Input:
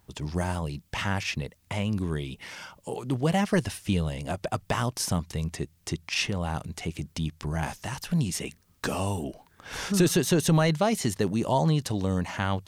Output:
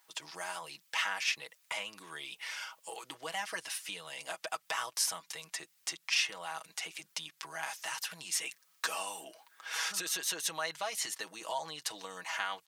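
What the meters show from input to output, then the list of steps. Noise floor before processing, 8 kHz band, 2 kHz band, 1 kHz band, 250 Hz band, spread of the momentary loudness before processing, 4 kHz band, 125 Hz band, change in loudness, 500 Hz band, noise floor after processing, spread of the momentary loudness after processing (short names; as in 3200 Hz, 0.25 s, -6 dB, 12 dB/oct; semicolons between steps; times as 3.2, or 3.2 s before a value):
-63 dBFS, -1.5 dB, -2.0 dB, -7.5 dB, -29.0 dB, 13 LU, -1.5 dB, -35.5 dB, -8.0 dB, -15.5 dB, -70 dBFS, 12 LU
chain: compressor 4:1, threshold -27 dBFS, peak gain reduction 9 dB; HPF 1100 Hz 12 dB/oct; comb 6.2 ms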